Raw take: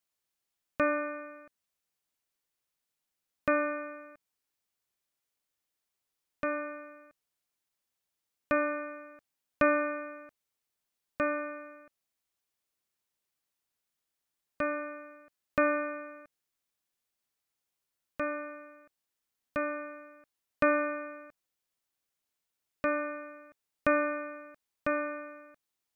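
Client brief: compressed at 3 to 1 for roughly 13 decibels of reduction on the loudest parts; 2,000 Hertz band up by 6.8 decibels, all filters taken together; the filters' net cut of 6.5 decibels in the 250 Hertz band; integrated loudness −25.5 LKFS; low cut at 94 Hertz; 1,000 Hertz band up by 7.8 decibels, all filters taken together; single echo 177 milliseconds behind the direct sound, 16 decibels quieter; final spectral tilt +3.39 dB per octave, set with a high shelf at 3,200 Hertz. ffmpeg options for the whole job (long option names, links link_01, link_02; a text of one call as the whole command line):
ffmpeg -i in.wav -af "highpass=94,equalizer=frequency=250:width_type=o:gain=-8.5,equalizer=frequency=1000:width_type=o:gain=8,equalizer=frequency=2000:width_type=o:gain=8,highshelf=frequency=3200:gain=-6.5,acompressor=threshold=-35dB:ratio=3,aecho=1:1:177:0.158,volume=13dB" out.wav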